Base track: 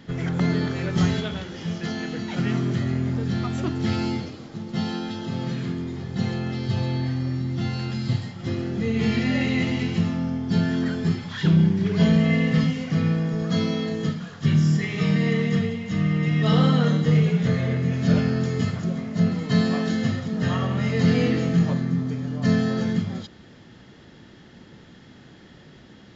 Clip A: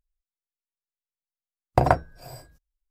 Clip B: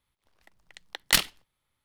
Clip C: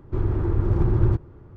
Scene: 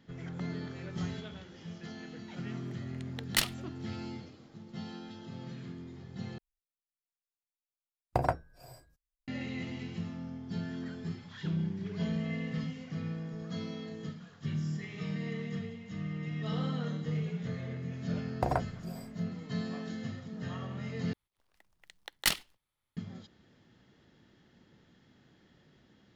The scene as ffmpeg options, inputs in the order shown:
-filter_complex "[2:a]asplit=2[s0][s1];[1:a]asplit=2[s2][s3];[0:a]volume=0.168[s4];[s3]alimiter=limit=0.501:level=0:latency=1:release=91[s5];[s1]acrusher=bits=4:mode=log:mix=0:aa=0.000001[s6];[s4]asplit=3[s7][s8][s9];[s7]atrim=end=6.384[s10];[s2]atrim=end=2.9,asetpts=PTS-STARTPTS,volume=0.316[s11];[s8]atrim=start=9.276:end=21.134[s12];[s6]atrim=end=1.84,asetpts=PTS-STARTPTS,volume=0.447[s13];[s9]atrim=start=22.966[s14];[s0]atrim=end=1.84,asetpts=PTS-STARTPTS,volume=0.447,afade=t=in:d=0.004:c=hsin,afade=t=out:st=1.836:d=0.004:c=hsin,adelay=2240[s15];[s5]atrim=end=2.9,asetpts=PTS-STARTPTS,volume=0.398,afade=t=in:d=0.004:c=hsin,afade=t=out:st=2.896:d=0.004:c=hsin,adelay=16650[s16];[s10][s11]acrossfade=d=0.004:c1=hsin:c2=hsin[s17];[s17][s12]acrossfade=d=0.004:c1=hsin:c2=hsin[s18];[s18][s13]acrossfade=d=0.004:c1=hsin:c2=hsin[s19];[s19][s14]acrossfade=d=0.004:c1=hsin:c2=hsin[s20];[s20][s15][s16]amix=inputs=3:normalize=0"

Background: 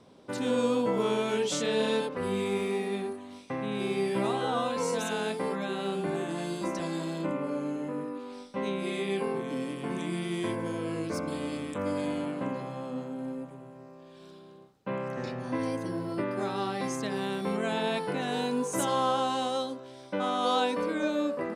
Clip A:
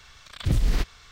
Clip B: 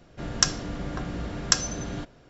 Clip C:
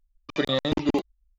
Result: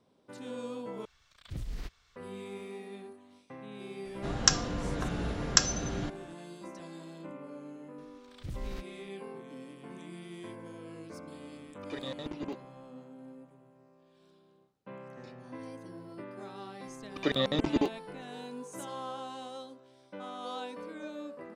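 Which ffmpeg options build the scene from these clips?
-filter_complex "[1:a]asplit=2[s0][s1];[3:a]asplit=2[s2][s3];[0:a]volume=0.224[s4];[s2]asoftclip=type=tanh:threshold=0.168[s5];[s4]asplit=2[s6][s7];[s6]atrim=end=1.054[s8];[s0]atrim=end=1.11,asetpts=PTS-STARTPTS,volume=0.15[s9];[s7]atrim=start=2.156[s10];[2:a]atrim=end=2.29,asetpts=PTS-STARTPTS,volume=0.841,afade=t=in:d=0.004:c=hsin,afade=t=out:st=2.286:d=0.004:c=hsin,adelay=178605S[s11];[s1]atrim=end=1.11,asetpts=PTS-STARTPTS,volume=0.133,afade=t=in:d=0.004:c=hsin,afade=t=out:st=1.106:d=0.004:c=hsin,adelay=7980[s12];[s5]atrim=end=1.38,asetpts=PTS-STARTPTS,volume=0.2,afade=t=in:d=0.004:c=hsin,afade=t=out:st=1.376:d=0.004:c=hsin,adelay=508914S[s13];[s3]atrim=end=1.38,asetpts=PTS-STARTPTS,volume=0.631,afade=t=in:d=0.004:c=hsin,afade=t=out:st=1.376:d=0.004:c=hsin,adelay=16870[s14];[s8][s9]acrossfade=d=0.004:c1=hsin:c2=hsin[s15];[s15][s10]acrossfade=d=0.004:c1=hsin:c2=hsin[s16];[s16][s11][s12][s13][s14]amix=inputs=5:normalize=0"

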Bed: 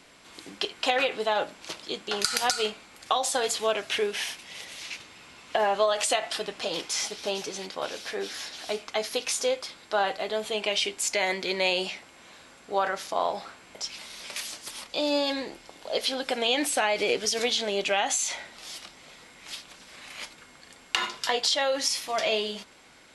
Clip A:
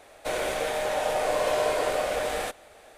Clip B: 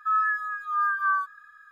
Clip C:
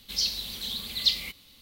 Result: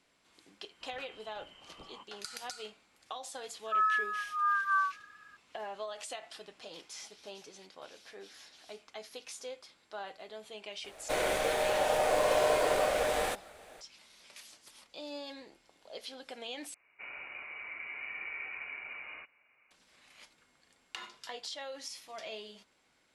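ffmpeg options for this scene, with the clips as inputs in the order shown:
-filter_complex "[1:a]asplit=2[s0][s1];[0:a]volume=0.141[s2];[3:a]lowpass=f=2700:t=q:w=0.5098,lowpass=f=2700:t=q:w=0.6013,lowpass=f=2700:t=q:w=0.9,lowpass=f=2700:t=q:w=2.563,afreqshift=-3200[s3];[s0]acrusher=bits=8:mode=log:mix=0:aa=0.000001[s4];[s1]lowpass=f=2500:t=q:w=0.5098,lowpass=f=2500:t=q:w=0.6013,lowpass=f=2500:t=q:w=0.9,lowpass=f=2500:t=q:w=2.563,afreqshift=-2900[s5];[s2]asplit=2[s6][s7];[s6]atrim=end=16.744[s8];[s5]atrim=end=2.97,asetpts=PTS-STARTPTS,volume=0.15[s9];[s7]atrim=start=19.706[s10];[s3]atrim=end=1.61,asetpts=PTS-STARTPTS,volume=0.251,afade=t=in:d=0.004:c=hsin,afade=t=out:st=1.606:d=0.004:c=hsin,adelay=720[s11];[2:a]atrim=end=1.71,asetpts=PTS-STARTPTS,volume=0.596,afade=t=in:d=0.004:c=hsin,afade=t=out:st=1.706:d=0.004:c=hsin,adelay=3660[s12];[s4]atrim=end=2.97,asetpts=PTS-STARTPTS,volume=0.794,afade=t=in:d=0.004:c=hsin,afade=t=out:st=2.966:d=0.004:c=hsin,adelay=10840[s13];[s8][s9]acrossfade=d=0.004:c1=hsin:c2=hsin[s14];[s14][s10]acrossfade=d=0.004:c1=hsin:c2=hsin[s15];[s15][s11][s12][s13]amix=inputs=4:normalize=0"

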